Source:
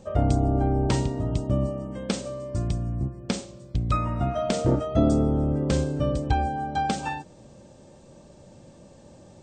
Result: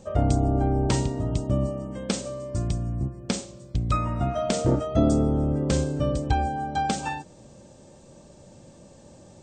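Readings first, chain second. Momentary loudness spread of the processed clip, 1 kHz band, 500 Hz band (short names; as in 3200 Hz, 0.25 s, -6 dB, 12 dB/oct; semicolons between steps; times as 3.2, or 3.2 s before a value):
9 LU, 0.0 dB, 0.0 dB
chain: bell 7400 Hz +4.5 dB 1 oct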